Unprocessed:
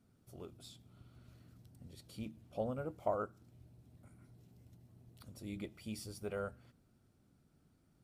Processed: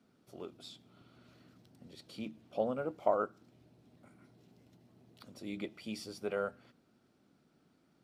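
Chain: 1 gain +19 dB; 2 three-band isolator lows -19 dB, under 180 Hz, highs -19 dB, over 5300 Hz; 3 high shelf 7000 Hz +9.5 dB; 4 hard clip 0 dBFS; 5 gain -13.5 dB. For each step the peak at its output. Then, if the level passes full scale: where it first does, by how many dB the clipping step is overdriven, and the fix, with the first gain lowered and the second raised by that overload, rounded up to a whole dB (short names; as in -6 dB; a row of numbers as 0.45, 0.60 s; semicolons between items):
-2.0, -2.5, -2.5, -2.5, -16.0 dBFS; no overload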